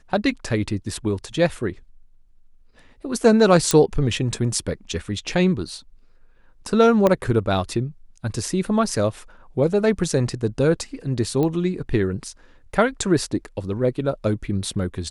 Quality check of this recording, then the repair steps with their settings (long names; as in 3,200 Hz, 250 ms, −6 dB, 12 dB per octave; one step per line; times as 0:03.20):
0:03.71: click −3 dBFS
0:07.07: click −6 dBFS
0:11.43: click −13 dBFS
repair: click removal